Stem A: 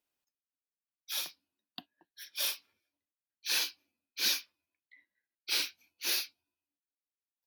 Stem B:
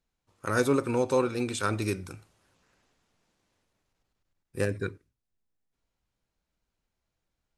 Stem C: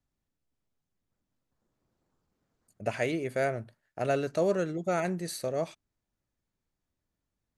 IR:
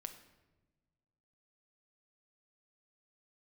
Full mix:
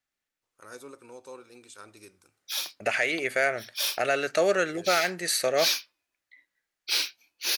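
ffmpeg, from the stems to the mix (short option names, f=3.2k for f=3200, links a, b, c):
-filter_complex "[0:a]lowpass=f=4k:p=1,adelay=1400,volume=-2dB[a];[1:a]adelay=150,volume=-18dB[b];[2:a]bandreject=f=1k:w=8,agate=range=-10dB:threshold=-53dB:ratio=16:detection=peak,equalizer=f=2k:w=0.7:g=12.5,volume=-2dB[c];[a][c]amix=inputs=2:normalize=0,acontrast=85,alimiter=limit=-13dB:level=0:latency=1:release=330,volume=0dB[d];[b][d]amix=inputs=2:normalize=0,bass=f=250:g=-13,treble=f=4k:g=6"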